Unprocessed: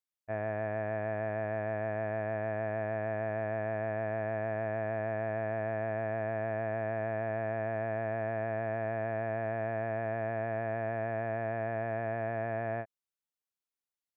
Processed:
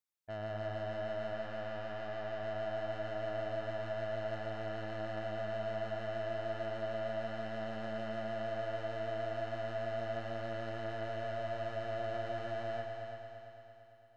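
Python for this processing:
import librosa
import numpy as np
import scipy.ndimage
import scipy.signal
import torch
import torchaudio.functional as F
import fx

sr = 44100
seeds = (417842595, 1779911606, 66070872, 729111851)

p1 = fx.highpass(x, sr, hz=42.0, slope=12, at=(1.33, 2.43))
p2 = 10.0 ** (-36.0 / 20.0) * np.tanh(p1 / 10.0 ** (-36.0 / 20.0))
p3 = p2 + fx.echo_heads(p2, sr, ms=113, heads='all three', feedback_pct=61, wet_db=-10.0, dry=0)
y = p3 * 10.0 ** (-1.5 / 20.0)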